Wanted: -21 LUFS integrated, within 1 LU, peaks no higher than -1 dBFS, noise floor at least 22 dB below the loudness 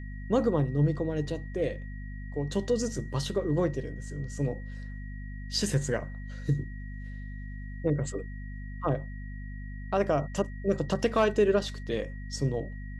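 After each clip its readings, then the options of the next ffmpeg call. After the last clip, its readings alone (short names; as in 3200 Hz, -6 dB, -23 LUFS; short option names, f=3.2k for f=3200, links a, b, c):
hum 50 Hz; harmonics up to 250 Hz; hum level -36 dBFS; steady tone 1900 Hz; tone level -50 dBFS; loudness -30.0 LUFS; peak -12.0 dBFS; loudness target -21.0 LUFS
-> -af "bandreject=f=50:t=h:w=4,bandreject=f=100:t=h:w=4,bandreject=f=150:t=h:w=4,bandreject=f=200:t=h:w=4,bandreject=f=250:t=h:w=4"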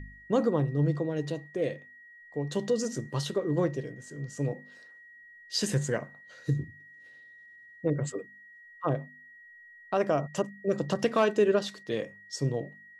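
hum none; steady tone 1900 Hz; tone level -50 dBFS
-> -af "bandreject=f=1.9k:w=30"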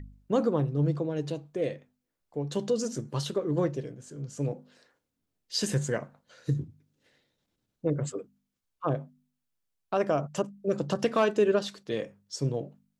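steady tone none; loudness -30.5 LUFS; peak -12.5 dBFS; loudness target -21.0 LUFS
-> -af "volume=9.5dB"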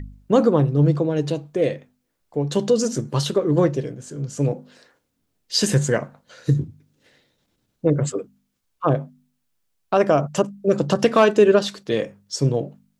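loudness -21.0 LUFS; peak -3.0 dBFS; noise floor -73 dBFS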